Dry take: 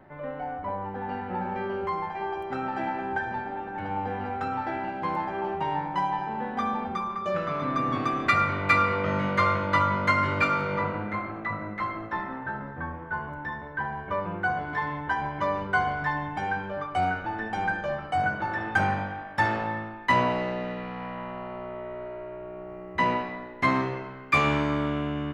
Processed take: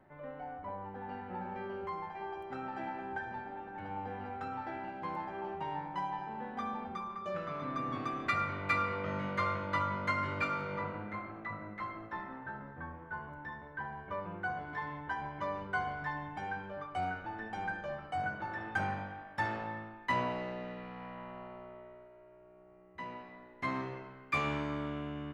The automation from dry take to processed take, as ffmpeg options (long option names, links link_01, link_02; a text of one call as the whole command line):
ffmpeg -i in.wav -af "volume=-1dB,afade=type=out:start_time=21.41:duration=0.68:silence=0.334965,afade=type=in:start_time=23.11:duration=0.82:silence=0.354813" out.wav